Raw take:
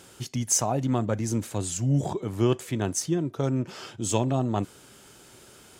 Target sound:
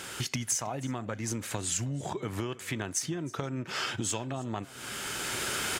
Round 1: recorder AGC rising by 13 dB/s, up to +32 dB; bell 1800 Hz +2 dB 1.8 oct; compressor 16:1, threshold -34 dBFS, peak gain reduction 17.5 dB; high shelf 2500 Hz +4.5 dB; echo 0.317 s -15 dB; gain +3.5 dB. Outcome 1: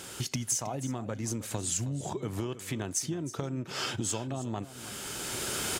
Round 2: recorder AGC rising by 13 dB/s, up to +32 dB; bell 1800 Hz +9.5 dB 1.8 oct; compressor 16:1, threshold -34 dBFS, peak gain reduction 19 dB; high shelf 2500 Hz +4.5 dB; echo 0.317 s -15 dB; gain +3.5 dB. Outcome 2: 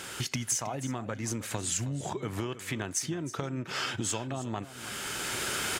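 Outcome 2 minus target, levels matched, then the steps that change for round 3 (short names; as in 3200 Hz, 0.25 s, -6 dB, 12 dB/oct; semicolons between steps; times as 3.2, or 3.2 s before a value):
echo-to-direct +6 dB
change: echo 0.317 s -21 dB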